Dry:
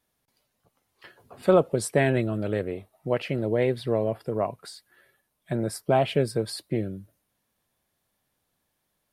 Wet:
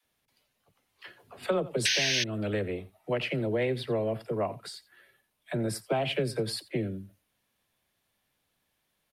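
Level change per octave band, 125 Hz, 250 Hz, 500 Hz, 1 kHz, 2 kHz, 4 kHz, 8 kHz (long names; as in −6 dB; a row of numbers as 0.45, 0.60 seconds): −5.5, −5.5, −6.0, −6.5, +1.5, +8.0, +2.5 decibels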